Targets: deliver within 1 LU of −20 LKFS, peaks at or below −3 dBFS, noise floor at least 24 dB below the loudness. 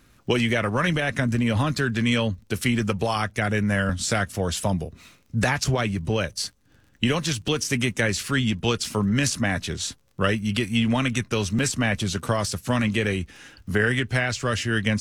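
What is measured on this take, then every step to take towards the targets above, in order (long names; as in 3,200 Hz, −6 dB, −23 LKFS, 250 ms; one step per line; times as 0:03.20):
crackle rate 26 per second; integrated loudness −24.5 LKFS; sample peak −8.0 dBFS; target loudness −20.0 LKFS
→ click removal
level +4.5 dB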